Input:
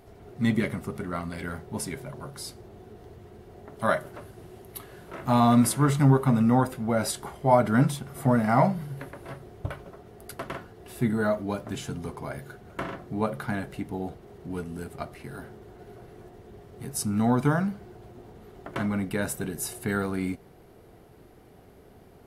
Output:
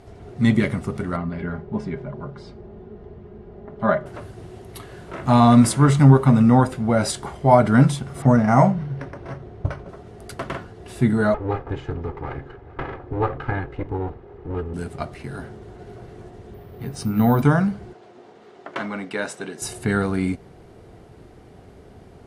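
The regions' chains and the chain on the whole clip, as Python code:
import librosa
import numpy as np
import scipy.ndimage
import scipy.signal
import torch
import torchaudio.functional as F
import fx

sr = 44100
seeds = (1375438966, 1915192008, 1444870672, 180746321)

y = fx.chain(x, sr, fx.spacing_loss(db_at_10k=35),
    fx.comb(ms=4.9, depth=0.49), at=(1.16, 4.06))
y = fx.chain(y, sr, fx.air_absorb(metres=62.0),
    fx.resample_linear(factor=6), at=(8.22, 9.89))
y = fx.chain(y, sr, fx.lower_of_two(delay_ms=2.4),
    fx.lowpass(hz=1900.0, slope=12), at=(11.34, 14.74))
y = fx.chain(y, sr, fx.lowpass(hz=4200.0, slope=12),
    fx.hum_notches(base_hz=50, count=7),
    fx.resample_bad(factor=3, down='filtered', up='zero_stuff'), at=(16.54, 17.42))
y = fx.chain(y, sr, fx.bandpass_edges(low_hz=250.0, high_hz=6400.0),
    fx.low_shelf(hz=320.0, db=-8.0), at=(17.93, 19.62))
y = scipy.signal.sosfilt(scipy.signal.butter(4, 9400.0, 'lowpass', fs=sr, output='sos'), y)
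y = fx.peak_eq(y, sr, hz=75.0, db=4.0, octaves=2.2)
y = F.gain(torch.from_numpy(y), 5.5).numpy()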